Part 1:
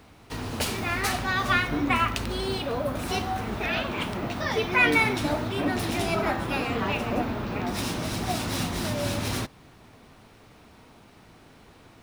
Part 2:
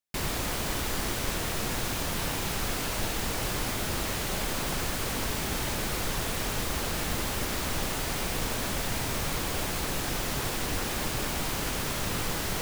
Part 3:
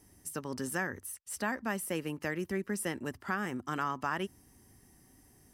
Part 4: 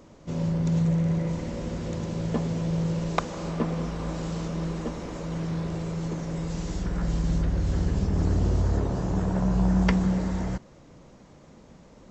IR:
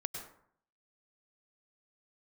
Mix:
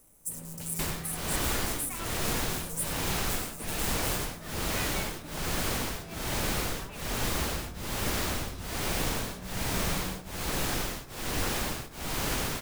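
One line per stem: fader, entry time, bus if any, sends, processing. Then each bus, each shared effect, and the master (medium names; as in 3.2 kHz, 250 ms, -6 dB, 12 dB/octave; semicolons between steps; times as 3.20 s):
-20.0 dB, 0.00 s, no send, no echo send, none
-1.5 dB, 0.65 s, send -8 dB, no echo send, tremolo of two beating tones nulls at 1.2 Hz
+2.5 dB, 0.00 s, send -8 dB, echo send -10 dB, square wave that keeps the level; inverse Chebyshev band-stop 120–1900 Hz, stop band 70 dB
-19.0 dB, 0.00 s, no send, no echo send, none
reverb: on, RT60 0.60 s, pre-delay 93 ms
echo: delay 815 ms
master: none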